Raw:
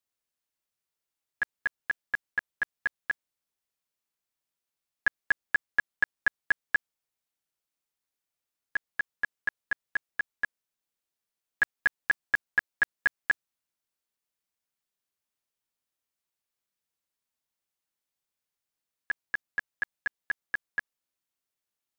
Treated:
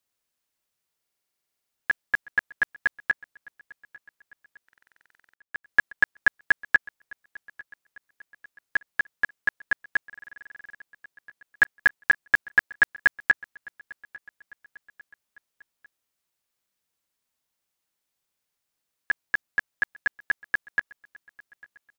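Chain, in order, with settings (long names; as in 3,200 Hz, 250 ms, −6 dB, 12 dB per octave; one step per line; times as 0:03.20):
0:05.07–0:05.64: noise gate −19 dBFS, range −18 dB
repeating echo 849 ms, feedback 52%, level −23.5 dB
buffer that repeats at 0:01.01/0:04.64/0:10.07, samples 2,048, times 14
level +6 dB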